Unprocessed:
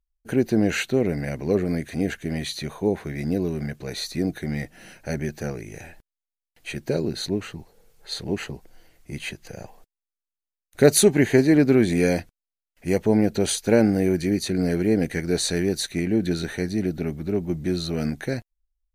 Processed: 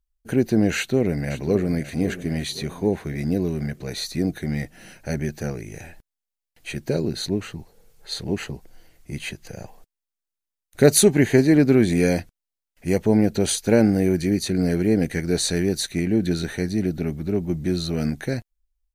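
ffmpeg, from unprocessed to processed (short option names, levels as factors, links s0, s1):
-filter_complex "[0:a]asplit=2[s0][s1];[s1]afade=t=in:st=0.76:d=0.01,afade=t=out:st=1.78:d=0.01,aecho=0:1:540|1080|1620|2160|2700:0.211349|0.105674|0.0528372|0.0264186|0.0132093[s2];[s0][s2]amix=inputs=2:normalize=0,bass=f=250:g=3,treble=f=4000:g=2"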